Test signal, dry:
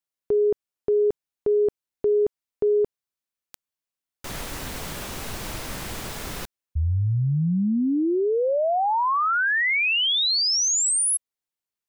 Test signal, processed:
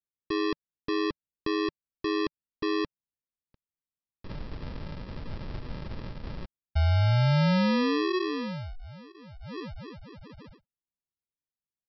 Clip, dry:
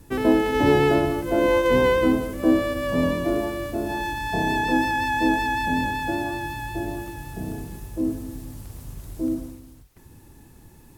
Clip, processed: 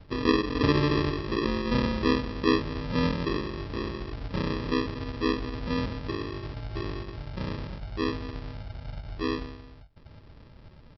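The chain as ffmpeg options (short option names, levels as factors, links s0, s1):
-af "firequalizer=gain_entry='entry(160,0);entry(1100,-29);entry(1800,-15);entry(3100,-25)':delay=0.05:min_phase=1,aresample=11025,acrusher=samples=15:mix=1:aa=0.000001,aresample=44100"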